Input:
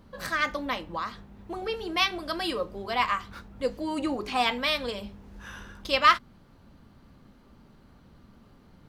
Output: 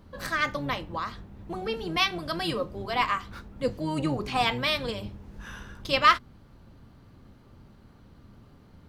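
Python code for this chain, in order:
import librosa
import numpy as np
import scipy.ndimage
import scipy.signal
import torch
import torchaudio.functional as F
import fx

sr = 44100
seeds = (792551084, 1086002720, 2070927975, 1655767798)

y = fx.octave_divider(x, sr, octaves=1, level_db=0.0)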